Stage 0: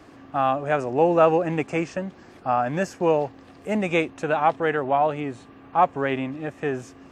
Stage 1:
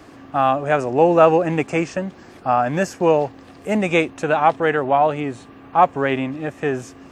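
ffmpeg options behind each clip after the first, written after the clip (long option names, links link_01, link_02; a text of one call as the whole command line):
ffmpeg -i in.wav -af "highshelf=frequency=6900:gain=4.5,volume=4.5dB" out.wav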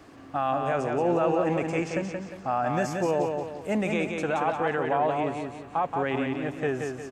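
ffmpeg -i in.wav -filter_complex "[0:a]alimiter=limit=-11dB:level=0:latency=1:release=21,asplit=2[link_01][link_02];[link_02]aecho=0:1:177|354|531|708|885:0.596|0.244|0.1|0.0411|0.0168[link_03];[link_01][link_03]amix=inputs=2:normalize=0,volume=-6.5dB" out.wav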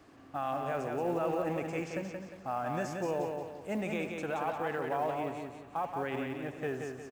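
ffmpeg -i in.wav -filter_complex "[0:a]asplit=2[link_01][link_02];[link_02]adelay=80,highpass=300,lowpass=3400,asoftclip=type=hard:threshold=-22.5dB,volume=-11dB[link_03];[link_01][link_03]amix=inputs=2:normalize=0,acrusher=bits=8:mode=log:mix=0:aa=0.000001,volume=-8dB" out.wav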